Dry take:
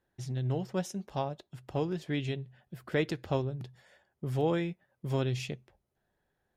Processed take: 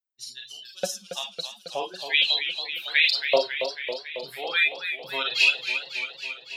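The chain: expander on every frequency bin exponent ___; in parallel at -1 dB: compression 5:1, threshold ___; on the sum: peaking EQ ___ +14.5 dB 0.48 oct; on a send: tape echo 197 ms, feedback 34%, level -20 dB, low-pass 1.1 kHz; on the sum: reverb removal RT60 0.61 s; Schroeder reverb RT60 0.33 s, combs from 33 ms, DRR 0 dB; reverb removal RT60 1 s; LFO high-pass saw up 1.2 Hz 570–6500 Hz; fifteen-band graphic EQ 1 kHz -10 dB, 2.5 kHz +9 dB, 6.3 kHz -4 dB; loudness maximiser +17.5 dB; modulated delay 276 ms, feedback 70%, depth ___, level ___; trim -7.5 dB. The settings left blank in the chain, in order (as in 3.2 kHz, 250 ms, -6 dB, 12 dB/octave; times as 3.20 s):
2, -46 dBFS, 4.1 kHz, 108 cents, -9 dB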